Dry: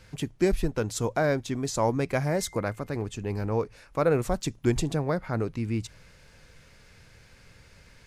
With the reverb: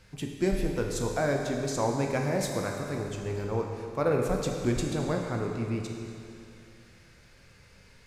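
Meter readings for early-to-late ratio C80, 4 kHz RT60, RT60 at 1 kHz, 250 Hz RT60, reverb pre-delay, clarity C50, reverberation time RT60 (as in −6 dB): 3.5 dB, 2.5 s, 2.6 s, 2.6 s, 12 ms, 3.0 dB, 2.6 s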